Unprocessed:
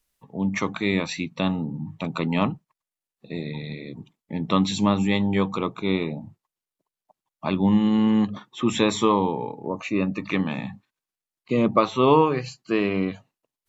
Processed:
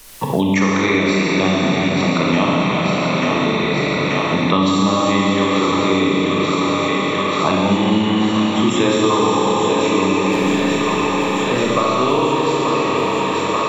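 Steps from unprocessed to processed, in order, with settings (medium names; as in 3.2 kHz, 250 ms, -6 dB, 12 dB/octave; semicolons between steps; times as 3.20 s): fade out at the end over 3.97 s; bass shelf 75 Hz -6 dB; 10.25–11.66 s: hard clipper -24.5 dBFS, distortion -24 dB; peaking EQ 210 Hz -6 dB 0.35 oct; on a send: thinning echo 885 ms, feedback 72%, high-pass 420 Hz, level -8 dB; on the sum: Schroeder reverb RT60 3.6 s, combs from 28 ms, DRR -6 dB; three bands compressed up and down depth 100%; trim +3 dB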